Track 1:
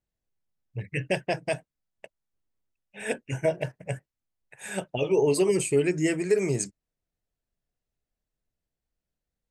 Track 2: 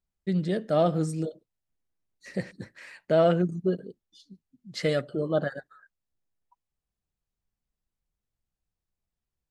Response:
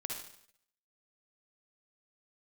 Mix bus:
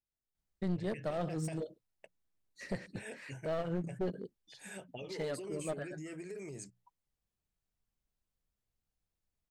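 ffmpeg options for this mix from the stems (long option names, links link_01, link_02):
-filter_complex "[0:a]alimiter=limit=-21.5dB:level=0:latency=1:release=11,bandreject=frequency=60:width_type=h:width=6,bandreject=frequency=120:width_type=h:width=6,bandreject=frequency=180:width_type=h:width=6,acompressor=threshold=-30dB:ratio=6,volume=-11.5dB,asplit=2[link_01][link_02];[1:a]adelay=350,volume=-2dB[link_03];[link_02]apad=whole_len=434449[link_04];[link_03][link_04]sidechaincompress=threshold=-51dB:ratio=8:attack=5.3:release=168[link_05];[link_01][link_05]amix=inputs=2:normalize=0,aeval=exprs='clip(val(0),-1,0.0211)':channel_layout=same,alimiter=level_in=1.5dB:limit=-24dB:level=0:latency=1:release=146,volume=-1.5dB"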